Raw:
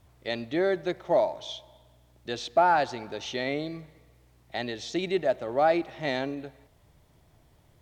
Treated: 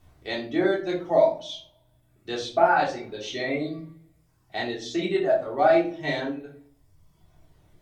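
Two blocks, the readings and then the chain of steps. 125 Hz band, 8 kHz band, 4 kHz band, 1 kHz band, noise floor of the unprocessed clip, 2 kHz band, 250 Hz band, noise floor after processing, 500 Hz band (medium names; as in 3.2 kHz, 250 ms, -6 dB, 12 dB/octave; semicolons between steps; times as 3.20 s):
+2.0 dB, +1.0 dB, +1.5 dB, +1.5 dB, -62 dBFS, +3.5 dB, +4.0 dB, -64 dBFS, +3.5 dB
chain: reverb removal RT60 1.4 s; simulated room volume 370 m³, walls furnished, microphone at 3.5 m; trim -3 dB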